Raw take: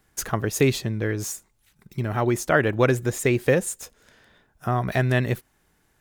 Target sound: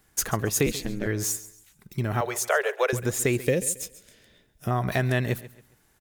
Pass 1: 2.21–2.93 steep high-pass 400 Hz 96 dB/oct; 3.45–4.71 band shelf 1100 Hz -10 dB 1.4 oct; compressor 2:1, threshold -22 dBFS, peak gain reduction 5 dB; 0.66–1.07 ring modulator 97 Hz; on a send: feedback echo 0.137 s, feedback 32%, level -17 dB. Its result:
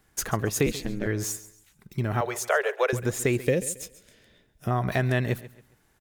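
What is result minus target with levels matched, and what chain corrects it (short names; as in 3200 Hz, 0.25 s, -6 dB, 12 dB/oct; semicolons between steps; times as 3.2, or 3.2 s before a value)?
8000 Hz band -3.0 dB
2.21–2.93 steep high-pass 400 Hz 96 dB/oct; 3.45–4.71 band shelf 1100 Hz -10 dB 1.4 oct; compressor 2:1, threshold -22 dBFS, peak gain reduction 5 dB; high shelf 4800 Hz +5.5 dB; 0.66–1.07 ring modulator 97 Hz; on a send: feedback echo 0.137 s, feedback 32%, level -17 dB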